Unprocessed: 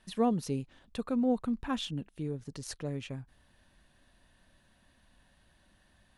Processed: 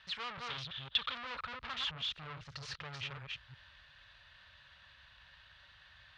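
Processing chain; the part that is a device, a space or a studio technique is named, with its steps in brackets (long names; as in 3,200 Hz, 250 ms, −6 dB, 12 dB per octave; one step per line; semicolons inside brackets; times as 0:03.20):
delay that plays each chunk backwards 177 ms, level −6 dB
de-essing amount 85%
scooped metal amplifier (tube saturation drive 44 dB, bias 0.45; loudspeaker in its box 81–4,100 Hz, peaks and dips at 200 Hz −9 dB, 730 Hz −5 dB, 1,300 Hz +5 dB; guitar amp tone stack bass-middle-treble 10-0-10)
0:00.50–0:01.15: parametric band 3,400 Hz +14 dB 0.55 octaves
level +15.5 dB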